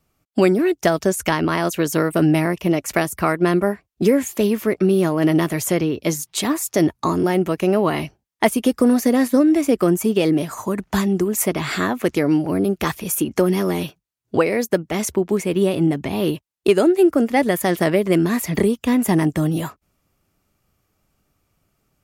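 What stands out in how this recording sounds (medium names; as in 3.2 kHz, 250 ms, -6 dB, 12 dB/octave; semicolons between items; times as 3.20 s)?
noise floor -72 dBFS; spectral tilt -5.5 dB/octave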